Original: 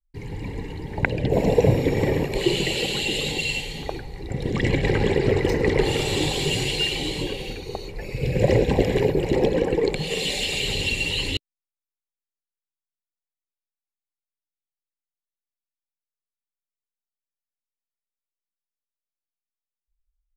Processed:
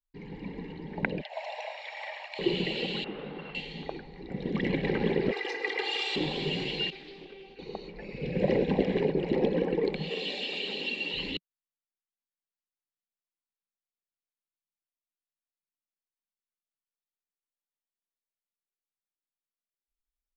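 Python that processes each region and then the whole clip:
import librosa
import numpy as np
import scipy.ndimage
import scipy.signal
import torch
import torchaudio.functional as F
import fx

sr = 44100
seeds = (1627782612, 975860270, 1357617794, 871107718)

y = fx.chain(x, sr, fx.cheby_ripple_highpass(hz=600.0, ripple_db=3),
    fx.high_shelf(hz=4700.0, db=10.5), at=(1.21, 2.39))
y = fx.chain(y, sr, fx.cvsd(bps=32000),
    fx.lowpass(hz=1300.0, slope=12),
    fx.low_shelf(hz=440.0, db=-5.5), at=(3.04, 3.55))
y = fx.chain(y, sr, fx.highpass(hz=890.0, slope=12),
    fx.high_shelf(hz=5600.0, db=11.5),
    fx.comb(ms=2.5, depth=0.93), at=(5.31, 6.16))
y = fx.chain(y, sr, fx.comb_fb(f0_hz=390.0, decay_s=0.17, harmonics='all', damping=0.0, mix_pct=90),
    fx.doppler_dist(depth_ms=0.38), at=(6.9, 7.59))
y = fx.chain(y, sr, fx.highpass(hz=230.0, slope=24),
    fx.notch(hz=2100.0, q=11.0), at=(10.09, 11.14))
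y = scipy.signal.sosfilt(scipy.signal.butter(4, 4300.0, 'lowpass', fs=sr, output='sos'), y)
y = fx.low_shelf_res(y, sr, hz=140.0, db=-8.5, q=3.0)
y = y * 10.0 ** (-7.5 / 20.0)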